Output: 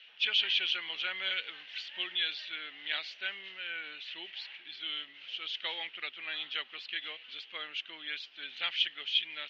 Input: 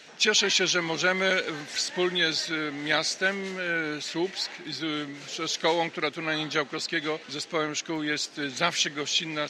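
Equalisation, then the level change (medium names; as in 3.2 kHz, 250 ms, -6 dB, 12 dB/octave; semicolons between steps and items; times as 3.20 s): band-pass filter 3 kHz, Q 6; distance through air 290 m; +8.0 dB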